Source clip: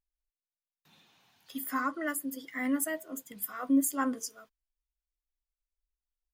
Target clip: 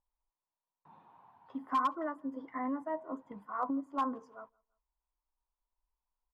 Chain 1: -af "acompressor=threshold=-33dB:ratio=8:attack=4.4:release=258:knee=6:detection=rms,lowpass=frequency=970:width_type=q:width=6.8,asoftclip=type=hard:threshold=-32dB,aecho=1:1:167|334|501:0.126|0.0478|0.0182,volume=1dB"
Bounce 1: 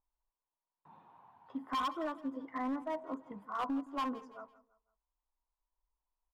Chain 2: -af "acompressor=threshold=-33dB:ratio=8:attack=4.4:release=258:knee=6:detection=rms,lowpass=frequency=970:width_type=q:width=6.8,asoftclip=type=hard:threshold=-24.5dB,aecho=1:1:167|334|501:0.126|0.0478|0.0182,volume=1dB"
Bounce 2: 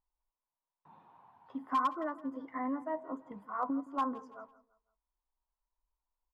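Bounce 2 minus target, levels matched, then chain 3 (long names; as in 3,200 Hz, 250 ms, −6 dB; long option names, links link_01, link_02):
echo-to-direct +11 dB
-af "acompressor=threshold=-33dB:ratio=8:attack=4.4:release=258:knee=6:detection=rms,lowpass=frequency=970:width_type=q:width=6.8,asoftclip=type=hard:threshold=-24.5dB,aecho=1:1:167|334:0.0355|0.0135,volume=1dB"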